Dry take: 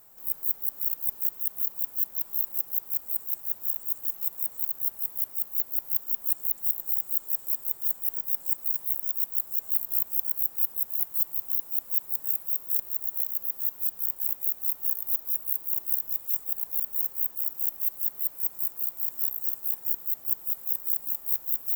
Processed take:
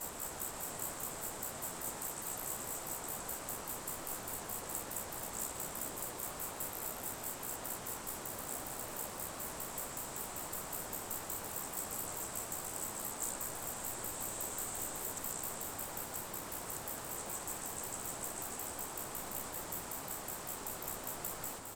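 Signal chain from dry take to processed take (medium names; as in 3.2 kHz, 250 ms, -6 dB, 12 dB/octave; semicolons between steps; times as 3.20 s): reverse the whole clip; Chebyshev low-pass 8.4 kHz, order 3; frequency-shifting echo 214 ms, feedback 53%, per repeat +100 Hz, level -7 dB; trim +13 dB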